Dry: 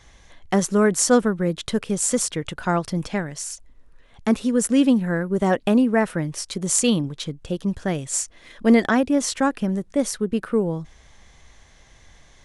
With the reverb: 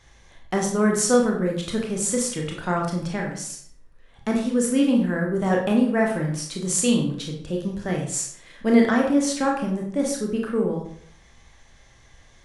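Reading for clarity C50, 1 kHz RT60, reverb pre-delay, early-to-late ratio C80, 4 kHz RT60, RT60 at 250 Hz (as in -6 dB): 4.5 dB, 0.60 s, 21 ms, 9.0 dB, 0.45 s, 0.65 s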